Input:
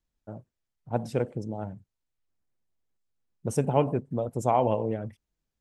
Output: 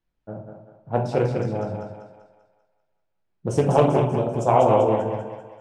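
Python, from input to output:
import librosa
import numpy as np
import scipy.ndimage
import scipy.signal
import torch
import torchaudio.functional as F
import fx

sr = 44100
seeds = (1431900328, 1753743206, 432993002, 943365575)

y = fx.env_lowpass(x, sr, base_hz=3000.0, full_db=-20.5)
y = fx.low_shelf(y, sr, hz=71.0, db=-8.5)
y = fx.echo_thinned(y, sr, ms=195, feedback_pct=47, hz=350.0, wet_db=-4.5)
y = fx.room_shoebox(y, sr, seeds[0], volume_m3=69.0, walls='mixed', distance_m=0.65)
y = fx.doppler_dist(y, sr, depth_ms=0.31)
y = y * 10.0 ** (4.0 / 20.0)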